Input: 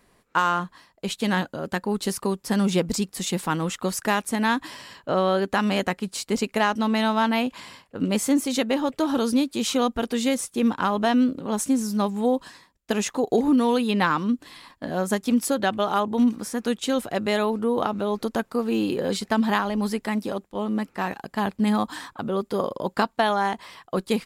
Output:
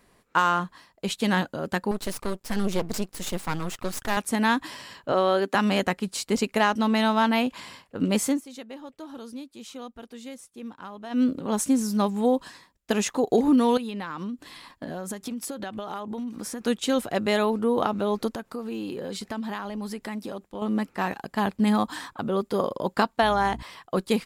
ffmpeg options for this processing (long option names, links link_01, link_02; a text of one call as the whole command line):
ffmpeg -i in.wav -filter_complex "[0:a]asettb=1/sr,asplit=3[link_01][link_02][link_03];[link_01]atrim=end=1.914[link_04];[link_02]atrim=start=1.91:end=4.17,asetpts=PTS-STARTPTS,afade=type=in:duration=0.004:curve=qsin,afade=type=out:start_time=2.256:duration=0.004:curve=qsin,aeval=exprs='max(val(0),0)':channel_layout=same[link_05];[link_03]atrim=start=4.166[link_06];[link_04][link_05]acrossfade=duration=0.004:curve1=hsin:curve2=qsin[link_07];[link_07][link_06]acrossfade=duration=0.004:curve1=qsin:curve2=hsin,asettb=1/sr,asplit=3[link_08][link_09][link_10];[link_08]atrim=end=5.124[link_11];[link_09]atrim=start=5.12:end=5.55,asetpts=PTS-STARTPTS,afade=type=in:duration=0.004:curve=qsin,afade=type=out:start_time=0.426:duration=0.004:curve=qsin,highpass=frequency=220:width=0.5412,highpass=frequency=220:width=1.3066[link_12];[link_10]atrim=start=5.546[link_13];[link_11][link_12]acrossfade=duration=0.004:curve1=hsin:curve2=qsin[link_14];[link_14][link_13]acrossfade=duration=0.004:curve1=qsin:curve2=hsin,asettb=1/sr,asplit=3[link_15][link_16][link_17];[link_15]atrim=end=13.774[link_18];[link_16]atrim=start=13.77:end=16.61,asetpts=PTS-STARTPTS,afade=type=in:duration=0.004:curve=qsin,afade=type=out:start_time=2.836:duration=0.004:curve=qsin,acompressor=threshold=-29dB:ratio=16:attack=3.2:release=140:knee=1:detection=peak[link_19];[link_17]atrim=start=16.606[link_20];[link_18][link_19]acrossfade=duration=0.004:curve1=hsin:curve2=qsin[link_21];[link_21][link_20]acrossfade=duration=0.004:curve1=qsin:curve2=hsin,asettb=1/sr,asplit=3[link_22][link_23][link_24];[link_22]atrim=end=18.324[link_25];[link_23]atrim=start=18.32:end=20.62,asetpts=PTS-STARTPTS,afade=type=in:duration=0.004:curve=qsin,afade=type=out:start_time=2.296:duration=0.004:curve=qsin,acompressor=threshold=-32dB:ratio=3:attack=3.2:release=140:knee=1:detection=peak[link_26];[link_24]atrim=start=20.616[link_27];[link_25][link_26]acrossfade=duration=0.004:curve1=hsin:curve2=qsin[link_28];[link_28][link_27]acrossfade=duration=0.004:curve1=qsin:curve2=hsin,asettb=1/sr,asplit=3[link_29][link_30][link_31];[link_29]atrim=end=23.224[link_32];[link_30]atrim=start=23.22:end=23.63,asetpts=PTS-STARTPTS,afade=type=in:duration=0.004:curve=qsin,afade=type=out:start_time=0.406:duration=0.004:curve=qsin,aeval=exprs='val(0)+0.0126*(sin(2*PI*60*n/s)+sin(2*PI*2*60*n/s)/2+sin(2*PI*3*60*n/s)/3+sin(2*PI*4*60*n/s)/4+sin(2*PI*5*60*n/s)/5)':channel_layout=same[link_33];[link_31]atrim=start=23.626[link_34];[link_32][link_33]acrossfade=duration=0.004:curve1=hsin:curve2=qsin[link_35];[link_35][link_34]acrossfade=duration=0.004:curve1=qsin:curve2=hsin,asplit=3[link_36][link_37][link_38];[link_36]atrim=end=8.41,asetpts=PTS-STARTPTS,afade=type=out:start_time=8.2:duration=0.21:curve=qsin:silence=0.141254[link_39];[link_37]atrim=start=8.41:end=11.1,asetpts=PTS-STARTPTS,volume=-17dB[link_40];[link_38]atrim=start=11.1,asetpts=PTS-STARTPTS,afade=type=in:duration=0.21:curve=qsin:silence=0.141254[link_41];[link_39][link_40][link_41]concat=n=3:v=0:a=1" out.wav